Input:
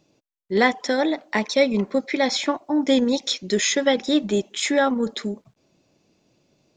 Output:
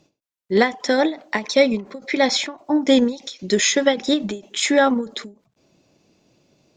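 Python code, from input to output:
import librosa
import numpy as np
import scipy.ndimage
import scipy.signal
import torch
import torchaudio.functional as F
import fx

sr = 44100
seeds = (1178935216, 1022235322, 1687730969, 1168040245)

y = fx.cheby_harmonics(x, sr, harmonics=(5,), levels_db=(-43,), full_scale_db=-5.0)
y = fx.end_taper(y, sr, db_per_s=190.0)
y = F.gain(torch.from_numpy(y), 3.5).numpy()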